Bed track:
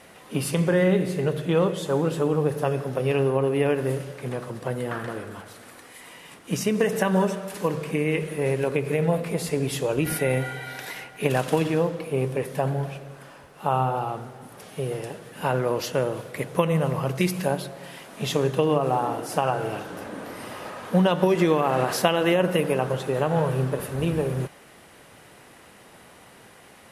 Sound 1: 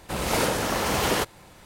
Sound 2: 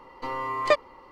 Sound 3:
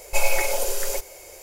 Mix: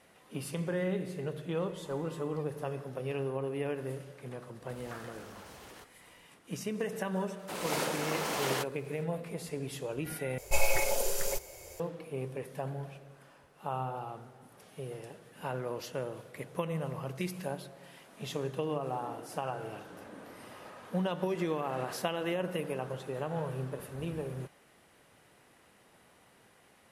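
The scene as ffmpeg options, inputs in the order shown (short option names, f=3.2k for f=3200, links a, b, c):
-filter_complex "[1:a]asplit=2[a][b];[0:a]volume=-12.5dB[c];[2:a]acompressor=threshold=-45dB:ratio=6:attack=3.2:release=140:knee=1:detection=peak[d];[a]acompressor=threshold=-32dB:ratio=6:attack=3.2:release=140:knee=1:detection=peak[e];[b]highpass=240[f];[3:a]equalizer=f=110:t=o:w=1.9:g=12.5[g];[c]asplit=2[h][i];[h]atrim=end=10.384[j];[g]atrim=end=1.42,asetpts=PTS-STARTPTS,volume=-6.5dB[k];[i]atrim=start=11.796[l];[d]atrim=end=1.11,asetpts=PTS-STARTPTS,volume=-9dB,afade=t=in:d=0.004:c=hsin,afade=t=out:st=1.106:d=0.004:c=hsin,adelay=1690[m];[e]atrim=end=1.65,asetpts=PTS-STARTPTS,volume=-16.5dB,afade=t=in:d=0.004:c=hsin,afade=t=out:st=1.646:d=0.004:c=hsin,adelay=4600[n];[f]atrim=end=1.65,asetpts=PTS-STARTPTS,volume=-8.5dB,afade=t=in:d=0.004:c=hsin,afade=t=out:st=1.646:d=0.004:c=hsin,adelay=7390[o];[j][k]acrossfade=d=0.004:c1=hsin:c2=hsin[p];[p][l]acrossfade=d=0.004:c1=hsin:c2=hsin[q];[q][m][n][o]amix=inputs=4:normalize=0"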